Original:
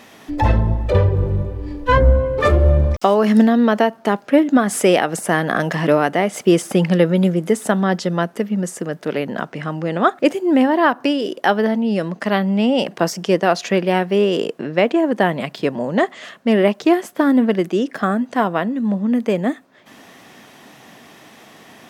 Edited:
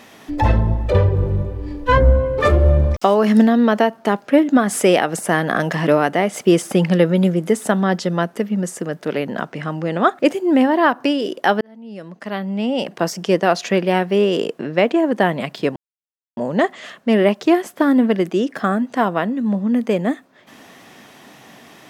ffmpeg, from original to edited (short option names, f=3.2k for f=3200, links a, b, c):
-filter_complex "[0:a]asplit=3[a][b][c];[a]atrim=end=11.61,asetpts=PTS-STARTPTS,afade=t=out:st=11.606:d=0.004:c=hsin[d];[b]atrim=start=11.61:end=15.76,asetpts=PTS-STARTPTS,afade=t=in:d=1.74,afade=t=out:st=4.146:d=0.004:c=hsin,apad=pad_dur=0.61[e];[c]atrim=start=15.76,asetpts=PTS-STARTPTS,afade=t=in:d=0.004:c=hsin[f];[d][e][f]concat=n=3:v=0:a=1"